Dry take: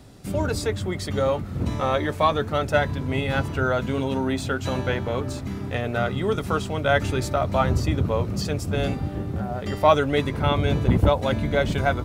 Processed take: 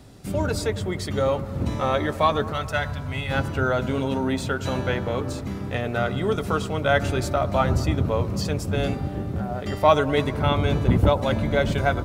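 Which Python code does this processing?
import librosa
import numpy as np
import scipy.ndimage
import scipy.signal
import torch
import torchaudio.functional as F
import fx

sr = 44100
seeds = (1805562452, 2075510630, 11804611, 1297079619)

y = fx.peak_eq(x, sr, hz=370.0, db=-12.5, octaves=1.8, at=(2.53, 3.31))
y = fx.echo_bbd(y, sr, ms=103, stages=1024, feedback_pct=74, wet_db=-16.5)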